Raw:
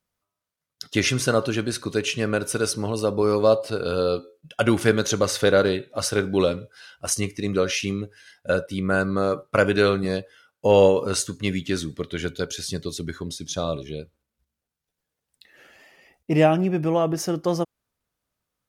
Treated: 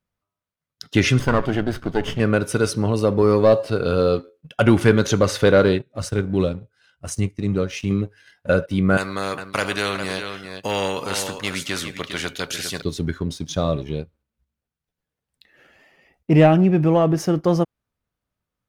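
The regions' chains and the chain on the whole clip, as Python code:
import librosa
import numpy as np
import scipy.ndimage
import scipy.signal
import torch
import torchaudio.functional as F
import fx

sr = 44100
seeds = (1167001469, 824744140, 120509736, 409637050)

y = fx.chain(x, sr, fx.lower_of_two(delay_ms=0.62),
    fx.high_shelf(hz=3400.0, db=-10.5), at=(1.19, 2.2))
y = fx.chain(y, sr, fx.curve_eq(hz=(130.0, 820.0, 5200.0, 7900.0, 11000.0), db=(0, -8, -6, -1, -6)),
    fx.transient(attack_db=-2, sustain_db=-6), at=(5.78, 7.91))
y = fx.chain(y, sr, fx.highpass(hz=820.0, slope=6),
    fx.echo_single(ms=405, db=-14.5),
    fx.spectral_comp(ratio=2.0), at=(8.97, 12.82))
y = fx.leveller(y, sr, passes=1)
y = fx.bass_treble(y, sr, bass_db=5, treble_db=-7)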